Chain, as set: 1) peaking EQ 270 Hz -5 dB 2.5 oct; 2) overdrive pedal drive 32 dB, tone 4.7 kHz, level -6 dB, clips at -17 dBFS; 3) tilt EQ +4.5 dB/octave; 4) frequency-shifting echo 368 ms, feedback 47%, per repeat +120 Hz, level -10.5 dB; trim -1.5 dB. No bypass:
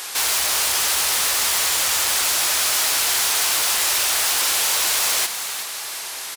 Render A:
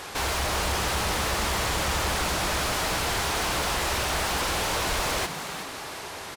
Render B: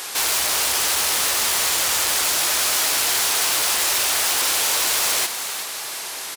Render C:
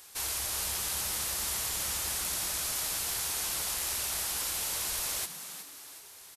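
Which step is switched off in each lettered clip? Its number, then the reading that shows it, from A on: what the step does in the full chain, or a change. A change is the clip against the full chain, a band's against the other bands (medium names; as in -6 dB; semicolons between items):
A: 3, 250 Hz band +14.0 dB; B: 1, 250 Hz band +4.0 dB; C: 2, crest factor change +3.0 dB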